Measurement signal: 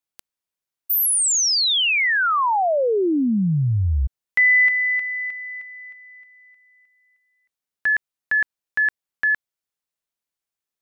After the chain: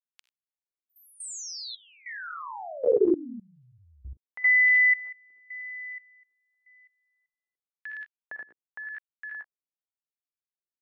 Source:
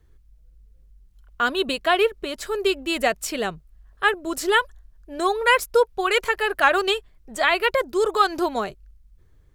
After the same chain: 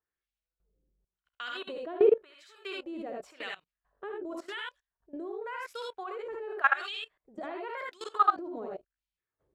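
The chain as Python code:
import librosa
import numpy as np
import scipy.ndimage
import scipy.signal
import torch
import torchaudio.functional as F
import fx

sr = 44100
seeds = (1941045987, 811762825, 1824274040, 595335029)

y = fx.peak_eq(x, sr, hz=1900.0, db=-2.5, octaves=2.5)
y = fx.filter_lfo_bandpass(y, sr, shape='sine', hz=0.91, low_hz=320.0, high_hz=3100.0, q=1.8)
y = fx.echo_multitap(y, sr, ms=(48, 62, 79, 95), db=(-12.5, -6.0, -4.0, -10.5))
y = fx.level_steps(y, sr, step_db=19)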